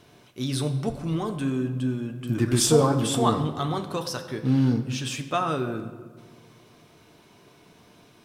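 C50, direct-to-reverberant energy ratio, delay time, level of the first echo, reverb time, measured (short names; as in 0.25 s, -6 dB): 10.5 dB, 5.5 dB, none, none, 1.6 s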